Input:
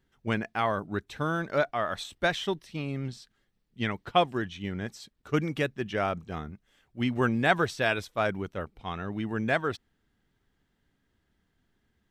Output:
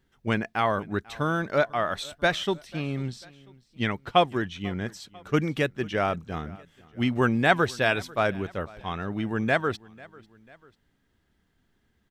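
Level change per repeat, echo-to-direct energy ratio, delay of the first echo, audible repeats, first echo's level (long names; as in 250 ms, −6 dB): −5.5 dB, −22.0 dB, 494 ms, 2, −23.0 dB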